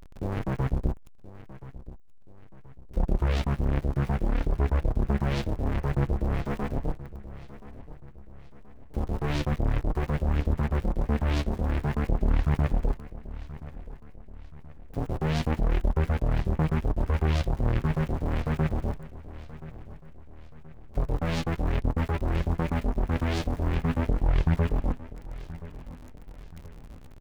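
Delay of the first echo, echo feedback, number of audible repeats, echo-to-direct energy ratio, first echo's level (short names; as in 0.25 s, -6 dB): 1.027 s, 44%, 3, -15.5 dB, -16.5 dB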